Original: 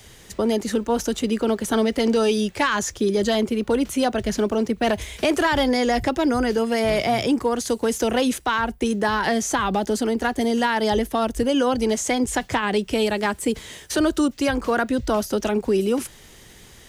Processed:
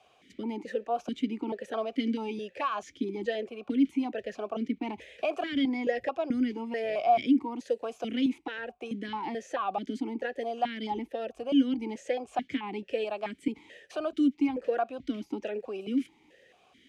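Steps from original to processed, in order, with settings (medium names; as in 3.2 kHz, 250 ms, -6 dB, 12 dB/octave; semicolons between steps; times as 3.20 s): stepped vowel filter 4.6 Hz; trim +1 dB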